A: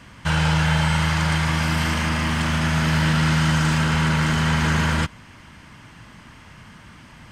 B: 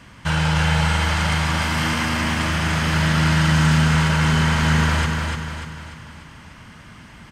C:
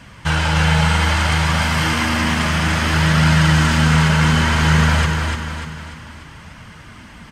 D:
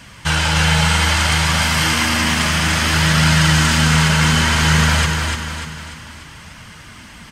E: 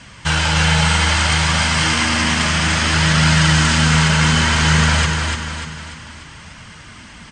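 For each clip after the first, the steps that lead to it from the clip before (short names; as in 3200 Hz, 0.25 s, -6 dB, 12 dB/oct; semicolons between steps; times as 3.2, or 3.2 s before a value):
feedback echo 0.295 s, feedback 48%, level -4 dB
flange 0.61 Hz, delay 1.2 ms, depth 3.7 ms, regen -55%; gain +7.5 dB
high shelf 2700 Hz +9.5 dB; gain -1 dB
steep low-pass 9000 Hz 72 dB/oct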